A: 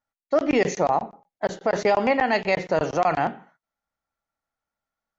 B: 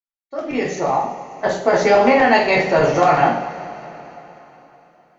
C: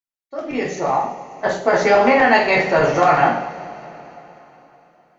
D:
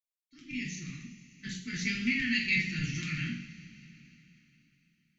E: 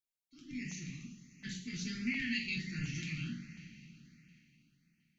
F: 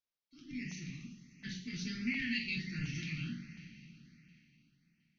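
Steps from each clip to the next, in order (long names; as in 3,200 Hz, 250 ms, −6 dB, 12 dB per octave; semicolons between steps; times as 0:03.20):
fade in at the beginning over 1.57 s; coupled-rooms reverb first 0.43 s, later 3.7 s, from −18 dB, DRR −4.5 dB; level +2.5 dB
dynamic equaliser 1,500 Hz, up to +4 dB, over −26 dBFS, Q 1; level −1.5 dB
elliptic band-stop filter 220–2,300 Hz, stop band 60 dB; level −6 dB
in parallel at −2 dB: downward compressor, threshold −39 dBFS, peak gain reduction 14 dB; on the sum: auto-filter notch saw up 1.4 Hz 810–3,900 Hz; level −7 dB
Butterworth low-pass 6,100 Hz 72 dB per octave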